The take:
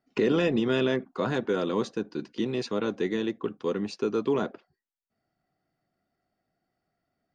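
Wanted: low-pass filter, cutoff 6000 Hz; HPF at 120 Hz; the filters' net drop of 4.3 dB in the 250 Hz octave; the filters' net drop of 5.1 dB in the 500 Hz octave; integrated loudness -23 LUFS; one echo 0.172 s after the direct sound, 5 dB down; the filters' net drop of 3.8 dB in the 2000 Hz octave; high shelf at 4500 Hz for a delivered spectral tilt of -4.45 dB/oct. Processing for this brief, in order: HPF 120 Hz; LPF 6000 Hz; bell 250 Hz -3.5 dB; bell 500 Hz -5 dB; bell 2000 Hz -5.5 dB; high shelf 4500 Hz +3.5 dB; echo 0.172 s -5 dB; gain +8.5 dB

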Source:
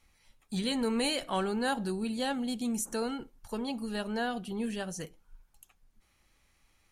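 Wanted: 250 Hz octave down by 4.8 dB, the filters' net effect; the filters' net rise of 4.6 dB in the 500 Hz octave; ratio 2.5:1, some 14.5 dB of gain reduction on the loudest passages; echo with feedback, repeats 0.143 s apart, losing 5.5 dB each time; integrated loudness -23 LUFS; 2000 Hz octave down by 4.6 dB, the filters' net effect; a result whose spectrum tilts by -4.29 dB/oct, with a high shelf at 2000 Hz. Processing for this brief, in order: bell 250 Hz -7 dB; bell 500 Hz +7.5 dB; high shelf 2000 Hz -3.5 dB; bell 2000 Hz -4.5 dB; compressor 2.5:1, threshold -48 dBFS; feedback echo 0.143 s, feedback 53%, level -5.5 dB; gain +21.5 dB

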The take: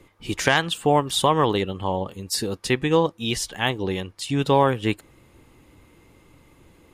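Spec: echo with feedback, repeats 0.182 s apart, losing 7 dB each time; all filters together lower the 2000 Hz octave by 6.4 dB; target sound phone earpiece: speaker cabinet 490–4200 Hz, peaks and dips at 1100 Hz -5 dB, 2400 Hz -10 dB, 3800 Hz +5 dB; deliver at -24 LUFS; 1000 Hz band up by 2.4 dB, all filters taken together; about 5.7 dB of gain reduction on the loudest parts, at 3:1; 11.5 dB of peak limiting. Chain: bell 1000 Hz +7.5 dB; bell 2000 Hz -8.5 dB; compressor 3:1, threshold -18 dBFS; limiter -18 dBFS; speaker cabinet 490–4200 Hz, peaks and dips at 1100 Hz -5 dB, 2400 Hz -10 dB, 3800 Hz +5 dB; feedback echo 0.182 s, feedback 45%, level -7 dB; gain +8.5 dB

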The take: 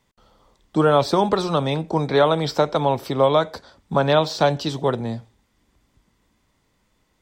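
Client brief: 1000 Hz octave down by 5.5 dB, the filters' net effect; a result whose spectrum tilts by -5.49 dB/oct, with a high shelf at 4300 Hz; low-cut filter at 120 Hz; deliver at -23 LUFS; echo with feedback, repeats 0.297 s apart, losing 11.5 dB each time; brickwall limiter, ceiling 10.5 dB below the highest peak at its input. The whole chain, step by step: HPF 120 Hz; bell 1000 Hz -7 dB; high shelf 4300 Hz -6.5 dB; limiter -17.5 dBFS; feedback echo 0.297 s, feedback 27%, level -11.5 dB; gain +4.5 dB

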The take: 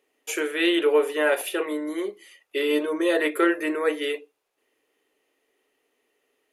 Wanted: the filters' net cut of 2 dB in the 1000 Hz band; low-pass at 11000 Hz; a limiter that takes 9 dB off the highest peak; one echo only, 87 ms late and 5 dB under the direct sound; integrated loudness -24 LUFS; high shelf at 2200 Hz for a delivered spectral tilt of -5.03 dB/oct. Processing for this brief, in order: LPF 11000 Hz; bell 1000 Hz -5 dB; high shelf 2200 Hz +6.5 dB; limiter -17.5 dBFS; echo 87 ms -5 dB; gain +2 dB

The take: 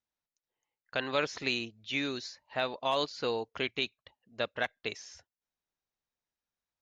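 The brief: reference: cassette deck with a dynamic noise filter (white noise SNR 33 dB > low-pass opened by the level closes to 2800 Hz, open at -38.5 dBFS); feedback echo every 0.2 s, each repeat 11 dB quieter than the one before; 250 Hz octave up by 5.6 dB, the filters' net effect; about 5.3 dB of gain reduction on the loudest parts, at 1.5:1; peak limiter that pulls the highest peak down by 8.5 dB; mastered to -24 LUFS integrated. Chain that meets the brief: bell 250 Hz +6.5 dB; compressor 1.5:1, threshold -40 dBFS; limiter -29 dBFS; feedback echo 0.2 s, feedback 28%, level -11 dB; white noise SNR 33 dB; low-pass opened by the level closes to 2800 Hz, open at -38.5 dBFS; gain +17.5 dB

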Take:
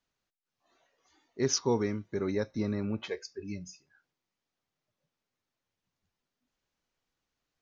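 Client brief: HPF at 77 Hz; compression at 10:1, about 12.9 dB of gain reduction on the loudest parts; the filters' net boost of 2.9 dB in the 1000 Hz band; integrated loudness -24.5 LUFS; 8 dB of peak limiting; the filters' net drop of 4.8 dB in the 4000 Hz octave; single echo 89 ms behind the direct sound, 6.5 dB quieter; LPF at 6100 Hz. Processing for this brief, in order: HPF 77 Hz; LPF 6100 Hz; bell 1000 Hz +3.5 dB; bell 4000 Hz -5 dB; compressor 10:1, threshold -35 dBFS; limiter -32.5 dBFS; echo 89 ms -6.5 dB; gain +18.5 dB

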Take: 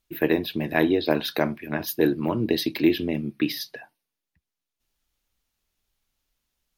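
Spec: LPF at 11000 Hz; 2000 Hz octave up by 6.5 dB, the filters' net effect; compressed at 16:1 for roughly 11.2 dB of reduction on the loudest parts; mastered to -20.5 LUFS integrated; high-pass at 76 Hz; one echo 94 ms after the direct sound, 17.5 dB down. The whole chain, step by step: HPF 76 Hz; LPF 11000 Hz; bell 2000 Hz +8 dB; compressor 16:1, threshold -25 dBFS; echo 94 ms -17.5 dB; gain +10.5 dB

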